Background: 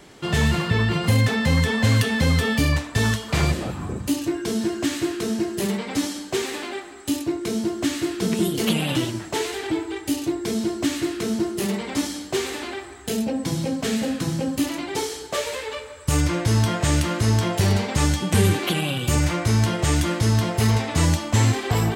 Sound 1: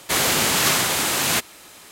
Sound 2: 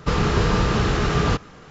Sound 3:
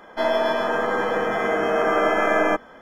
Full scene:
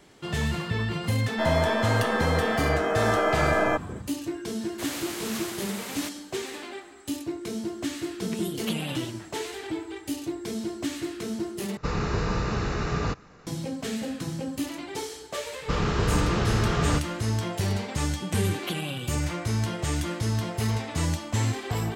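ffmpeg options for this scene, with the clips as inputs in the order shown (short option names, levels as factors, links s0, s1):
-filter_complex "[2:a]asplit=2[s0][s1];[0:a]volume=0.422[s2];[s0]bandreject=f=3200:w=5.2[s3];[s2]asplit=2[s4][s5];[s4]atrim=end=11.774[s6];[s3]atrim=end=1.7,asetpts=PTS-STARTPTS,volume=0.422[s7];[s5]atrim=start=13.466[s8];[3:a]atrim=end=2.81,asetpts=PTS-STARTPTS,volume=0.631,afade=t=in:d=0.004:c=hsin,afade=t=out:st=2.806:d=0.004:c=hsin,adelay=1210[s9];[1:a]atrim=end=1.91,asetpts=PTS-STARTPTS,volume=0.141,afade=t=in:d=0.004:c=hsin,afade=t=out:st=1.906:d=0.004:c=hsin,adelay=206829S[s10];[s1]atrim=end=1.7,asetpts=PTS-STARTPTS,volume=0.531,afade=t=in:d=0.004:c=hsin,afade=t=out:st=1.696:d=0.004:c=hsin,adelay=15620[s11];[s6][s7]acrossfade=d=0.004:c1=hsin:c2=hsin[s12];[s12][s8]acrossfade=d=0.004:c1=hsin:c2=hsin[s13];[s13][s9][s10][s11]amix=inputs=4:normalize=0"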